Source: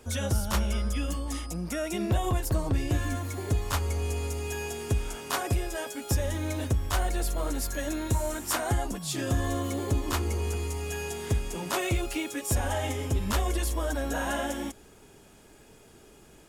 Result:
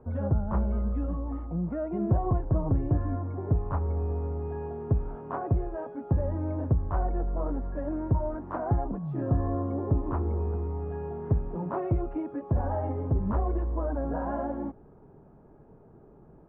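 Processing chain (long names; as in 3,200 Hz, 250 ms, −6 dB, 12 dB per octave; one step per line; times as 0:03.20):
low-pass filter 1,100 Hz 24 dB per octave
parametric band 150 Hz +7 dB 0.66 octaves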